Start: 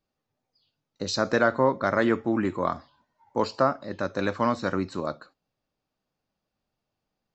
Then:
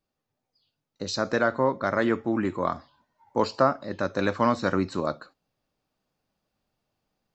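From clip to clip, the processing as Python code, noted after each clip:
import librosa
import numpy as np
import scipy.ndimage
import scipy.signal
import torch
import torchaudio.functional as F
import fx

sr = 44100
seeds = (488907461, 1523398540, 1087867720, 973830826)

y = fx.rider(x, sr, range_db=10, speed_s=2.0)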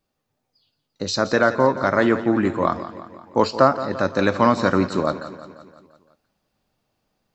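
y = fx.echo_feedback(x, sr, ms=172, feedback_pct=57, wet_db=-13.5)
y = y * 10.0 ** (6.0 / 20.0)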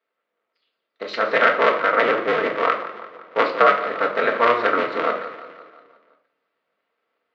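y = fx.cycle_switch(x, sr, every=2, mode='inverted')
y = fx.cabinet(y, sr, low_hz=460.0, low_slope=12, high_hz=3500.0, hz=(510.0, 820.0, 1300.0, 2000.0), db=(8, -6, 7, 6))
y = fx.room_shoebox(y, sr, seeds[0], volume_m3=650.0, walls='furnished', distance_m=1.6)
y = y * 10.0 ** (-3.0 / 20.0)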